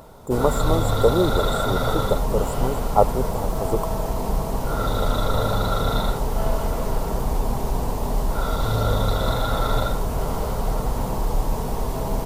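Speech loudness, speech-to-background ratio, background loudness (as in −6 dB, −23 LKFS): −25.0 LKFS, 0.0 dB, −25.0 LKFS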